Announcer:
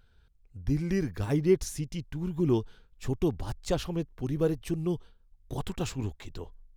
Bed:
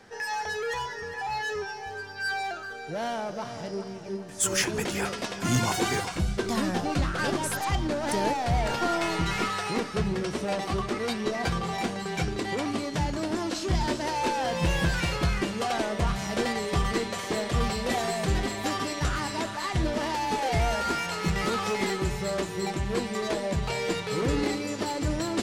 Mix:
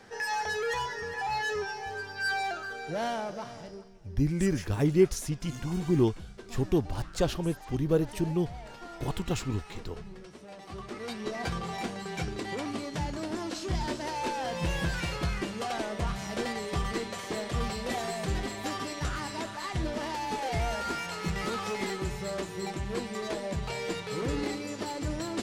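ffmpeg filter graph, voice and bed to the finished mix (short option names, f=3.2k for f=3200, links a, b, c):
-filter_complex "[0:a]adelay=3500,volume=1.5dB[a];[1:a]volume=13dB,afade=t=out:st=3.02:d=0.89:silence=0.125893,afade=t=in:st=10.56:d=0.85:silence=0.223872[b];[a][b]amix=inputs=2:normalize=0"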